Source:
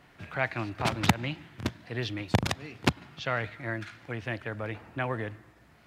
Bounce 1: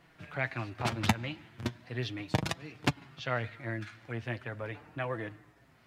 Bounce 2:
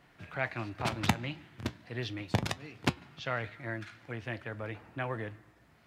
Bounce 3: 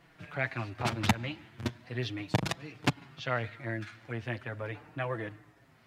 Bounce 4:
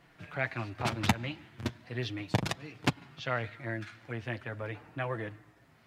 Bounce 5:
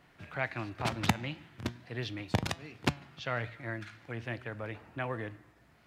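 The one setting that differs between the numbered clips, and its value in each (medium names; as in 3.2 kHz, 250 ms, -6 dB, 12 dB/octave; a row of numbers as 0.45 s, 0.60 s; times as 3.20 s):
flange, regen: +35%, -76%, +2%, -22%, +89%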